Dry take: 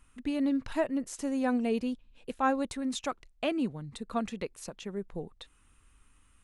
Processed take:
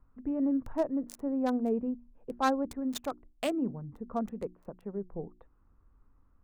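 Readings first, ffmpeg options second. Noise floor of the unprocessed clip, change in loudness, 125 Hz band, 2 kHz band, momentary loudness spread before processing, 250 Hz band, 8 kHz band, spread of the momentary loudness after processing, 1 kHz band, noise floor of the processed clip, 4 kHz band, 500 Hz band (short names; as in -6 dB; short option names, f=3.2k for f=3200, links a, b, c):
-64 dBFS, -0.5 dB, -0.5 dB, -4.5 dB, 13 LU, -0.5 dB, -5.5 dB, 12 LU, -1.0 dB, -65 dBFS, -3.5 dB, -0.5 dB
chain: -filter_complex "[0:a]bandreject=f=60:t=h:w=6,bandreject=f=120:t=h:w=6,bandreject=f=180:t=h:w=6,bandreject=f=240:t=h:w=6,bandreject=f=300:t=h:w=6,bandreject=f=360:t=h:w=6,acrossover=split=430|1200[a][b][c];[c]acrusher=bits=4:mix=0:aa=0.5[d];[a][b][d]amix=inputs=3:normalize=0"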